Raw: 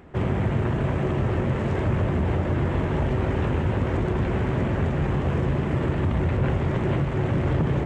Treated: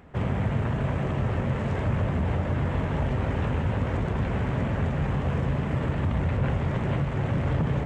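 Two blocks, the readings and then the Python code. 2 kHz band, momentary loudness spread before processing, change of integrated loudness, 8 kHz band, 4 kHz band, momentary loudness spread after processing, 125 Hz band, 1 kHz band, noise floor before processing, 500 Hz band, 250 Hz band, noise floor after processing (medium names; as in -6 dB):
-2.0 dB, 1 LU, -2.5 dB, no reading, -2.0 dB, 1 LU, -2.0 dB, -2.0 dB, -26 dBFS, -4.5 dB, -3.5 dB, -29 dBFS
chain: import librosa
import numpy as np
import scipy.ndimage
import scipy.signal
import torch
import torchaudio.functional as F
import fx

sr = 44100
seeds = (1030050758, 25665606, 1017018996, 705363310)

y = fx.peak_eq(x, sr, hz=350.0, db=-10.0, octaves=0.3)
y = F.gain(torch.from_numpy(y), -2.0).numpy()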